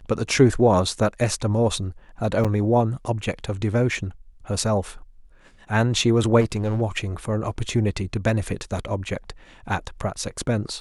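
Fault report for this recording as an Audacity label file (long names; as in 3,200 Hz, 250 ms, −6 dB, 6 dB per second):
2.440000	2.450000	drop-out 6.6 ms
6.400000	6.820000	clipping −18.5 dBFS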